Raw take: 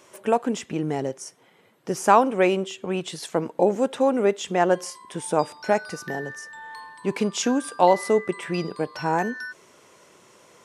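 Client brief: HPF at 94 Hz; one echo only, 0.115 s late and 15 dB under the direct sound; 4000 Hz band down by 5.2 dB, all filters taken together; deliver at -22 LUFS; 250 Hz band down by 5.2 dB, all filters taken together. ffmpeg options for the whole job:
-af "highpass=94,equalizer=f=250:t=o:g=-7,equalizer=f=4k:t=o:g=-7.5,aecho=1:1:115:0.178,volume=4dB"

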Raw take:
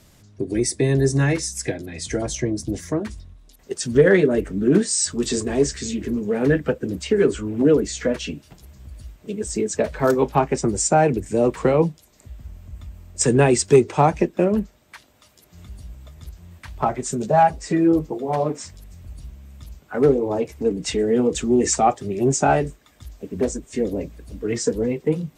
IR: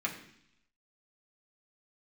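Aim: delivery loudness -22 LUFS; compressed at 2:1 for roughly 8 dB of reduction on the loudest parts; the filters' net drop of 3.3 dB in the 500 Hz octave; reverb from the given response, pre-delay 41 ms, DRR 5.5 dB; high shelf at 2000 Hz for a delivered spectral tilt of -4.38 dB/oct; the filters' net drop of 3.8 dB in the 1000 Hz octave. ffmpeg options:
-filter_complex "[0:a]equalizer=f=500:t=o:g=-3.5,equalizer=f=1k:t=o:g=-4.5,highshelf=f=2k:g=3.5,acompressor=threshold=-26dB:ratio=2,asplit=2[a][b];[1:a]atrim=start_sample=2205,adelay=41[c];[b][c]afir=irnorm=-1:irlink=0,volume=-10.5dB[d];[a][d]amix=inputs=2:normalize=0,volume=4.5dB"

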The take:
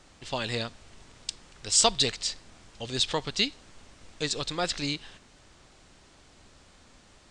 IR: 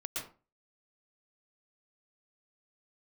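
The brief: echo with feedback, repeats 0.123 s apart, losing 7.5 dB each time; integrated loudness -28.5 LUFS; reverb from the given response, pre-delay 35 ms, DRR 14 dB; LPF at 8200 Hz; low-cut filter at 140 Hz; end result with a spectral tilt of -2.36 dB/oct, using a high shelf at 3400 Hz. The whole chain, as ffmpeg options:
-filter_complex "[0:a]highpass=140,lowpass=8.2k,highshelf=f=3.4k:g=-5,aecho=1:1:123|246|369|492|615:0.422|0.177|0.0744|0.0312|0.0131,asplit=2[a][b];[1:a]atrim=start_sample=2205,adelay=35[c];[b][c]afir=irnorm=-1:irlink=0,volume=-15.5dB[d];[a][d]amix=inputs=2:normalize=0,volume=2dB"

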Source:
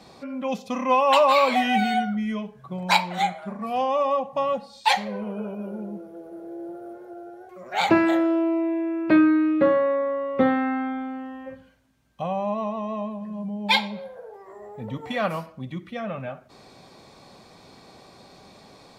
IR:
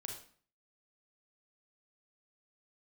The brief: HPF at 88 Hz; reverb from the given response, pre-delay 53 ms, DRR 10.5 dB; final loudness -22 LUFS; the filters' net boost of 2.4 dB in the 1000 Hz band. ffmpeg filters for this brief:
-filter_complex "[0:a]highpass=88,equalizer=f=1k:t=o:g=3,asplit=2[a][b];[1:a]atrim=start_sample=2205,adelay=53[c];[b][c]afir=irnorm=-1:irlink=0,volume=-8dB[d];[a][d]amix=inputs=2:normalize=0,volume=0.5dB"

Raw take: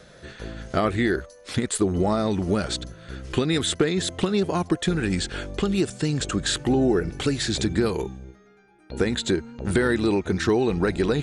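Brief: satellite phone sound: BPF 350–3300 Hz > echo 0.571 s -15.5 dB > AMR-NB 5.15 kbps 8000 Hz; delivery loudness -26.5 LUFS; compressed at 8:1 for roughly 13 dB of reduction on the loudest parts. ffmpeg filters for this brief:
-af "acompressor=threshold=-31dB:ratio=8,highpass=350,lowpass=3.3k,aecho=1:1:571:0.168,volume=15dB" -ar 8000 -c:a libopencore_amrnb -b:a 5150

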